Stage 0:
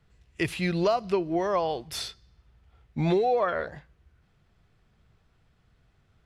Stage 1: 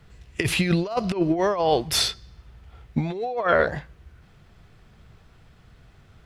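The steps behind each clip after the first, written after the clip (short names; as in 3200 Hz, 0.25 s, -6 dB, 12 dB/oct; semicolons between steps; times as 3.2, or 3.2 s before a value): negative-ratio compressor -29 dBFS, ratio -0.5; gain +8 dB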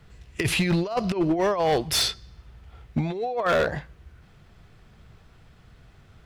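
hard clip -17 dBFS, distortion -14 dB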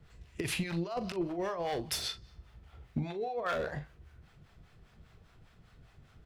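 compressor, threshold -25 dBFS, peak gain reduction 6.5 dB; harmonic tremolo 5 Hz, depth 70%, crossover 600 Hz; doubler 41 ms -11 dB; gain -3.5 dB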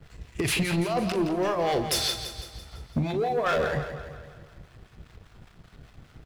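sample leveller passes 2; on a send: feedback echo 0.168 s, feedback 53%, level -10 dB; on the sum: gain +3 dB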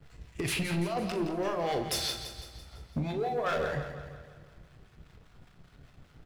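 reverb RT60 0.65 s, pre-delay 7 ms, DRR 7.5 dB; gain -6 dB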